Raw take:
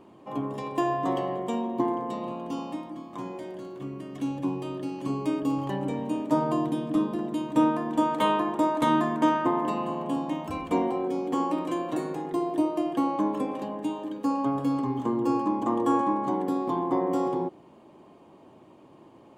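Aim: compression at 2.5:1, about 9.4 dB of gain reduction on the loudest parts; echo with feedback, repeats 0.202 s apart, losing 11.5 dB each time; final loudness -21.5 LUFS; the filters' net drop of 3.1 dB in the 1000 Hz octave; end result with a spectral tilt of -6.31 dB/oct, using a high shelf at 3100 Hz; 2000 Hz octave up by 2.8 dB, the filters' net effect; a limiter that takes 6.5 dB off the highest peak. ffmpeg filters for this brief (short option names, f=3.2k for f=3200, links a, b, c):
-af "equalizer=f=1k:t=o:g=-4.5,equalizer=f=2k:t=o:g=8,highshelf=f=3.1k:g=-8.5,acompressor=threshold=-33dB:ratio=2.5,alimiter=level_in=3dB:limit=-24dB:level=0:latency=1,volume=-3dB,aecho=1:1:202|404|606:0.266|0.0718|0.0194,volume=14.5dB"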